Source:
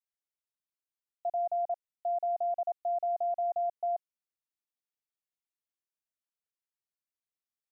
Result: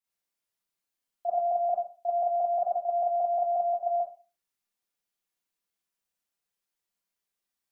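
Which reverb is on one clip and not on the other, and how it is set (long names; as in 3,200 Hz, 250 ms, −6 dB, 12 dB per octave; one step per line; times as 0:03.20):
four-comb reverb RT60 0.35 s, combs from 32 ms, DRR −7 dB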